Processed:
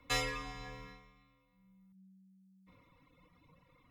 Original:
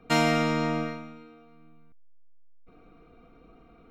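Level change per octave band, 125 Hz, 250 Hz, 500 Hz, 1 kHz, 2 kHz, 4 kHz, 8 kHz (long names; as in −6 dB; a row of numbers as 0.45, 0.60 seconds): −16.0, −23.0, −16.5, −14.5, −9.5, −7.0, −4.5 decibels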